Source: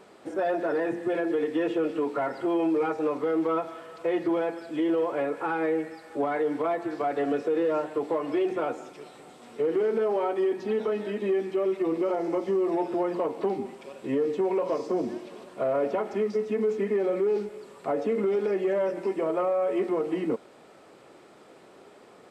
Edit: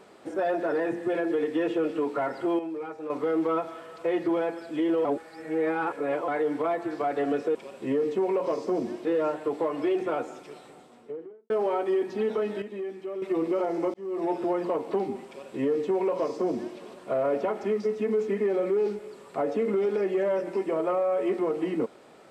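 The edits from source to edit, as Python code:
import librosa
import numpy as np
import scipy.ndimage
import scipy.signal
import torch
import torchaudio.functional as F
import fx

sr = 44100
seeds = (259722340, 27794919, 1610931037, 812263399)

y = fx.studio_fade_out(x, sr, start_s=9.01, length_s=0.99)
y = fx.edit(y, sr, fx.clip_gain(start_s=2.59, length_s=0.51, db=-9.5),
    fx.reverse_span(start_s=5.05, length_s=1.23),
    fx.clip_gain(start_s=11.12, length_s=0.6, db=-8.5),
    fx.fade_in_span(start_s=12.44, length_s=0.37),
    fx.duplicate(start_s=13.77, length_s=1.5, to_s=7.55), tone=tone)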